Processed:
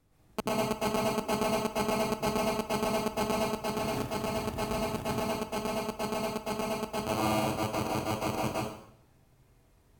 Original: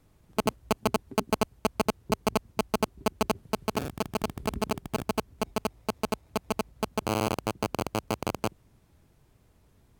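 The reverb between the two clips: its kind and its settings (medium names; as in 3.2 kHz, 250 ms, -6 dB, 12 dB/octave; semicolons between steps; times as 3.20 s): plate-style reverb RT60 0.68 s, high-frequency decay 0.9×, pre-delay 100 ms, DRR -6.5 dB; trim -7 dB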